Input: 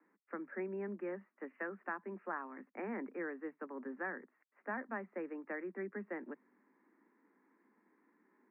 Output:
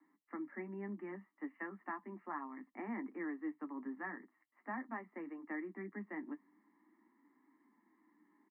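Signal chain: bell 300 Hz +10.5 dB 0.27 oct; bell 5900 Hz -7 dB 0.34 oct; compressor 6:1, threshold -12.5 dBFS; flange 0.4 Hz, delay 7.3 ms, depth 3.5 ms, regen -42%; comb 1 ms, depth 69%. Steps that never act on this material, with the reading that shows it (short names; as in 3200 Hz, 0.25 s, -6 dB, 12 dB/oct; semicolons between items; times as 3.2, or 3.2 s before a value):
bell 5900 Hz: input band ends at 2200 Hz; compressor, threshold -12.5 dBFS: input peak -26.5 dBFS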